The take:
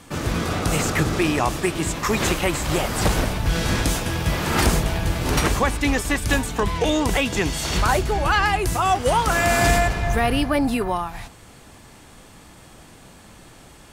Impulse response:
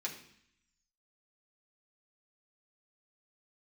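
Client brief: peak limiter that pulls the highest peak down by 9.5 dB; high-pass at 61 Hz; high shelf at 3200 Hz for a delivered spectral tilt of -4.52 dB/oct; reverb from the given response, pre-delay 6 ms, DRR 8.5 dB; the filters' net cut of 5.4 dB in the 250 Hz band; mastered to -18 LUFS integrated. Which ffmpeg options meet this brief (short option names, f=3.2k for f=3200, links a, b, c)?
-filter_complex "[0:a]highpass=61,equalizer=f=250:t=o:g=-7.5,highshelf=f=3.2k:g=-7,alimiter=limit=-17dB:level=0:latency=1,asplit=2[a][b];[1:a]atrim=start_sample=2205,adelay=6[c];[b][c]afir=irnorm=-1:irlink=0,volume=-9.5dB[d];[a][d]amix=inputs=2:normalize=0,volume=8.5dB"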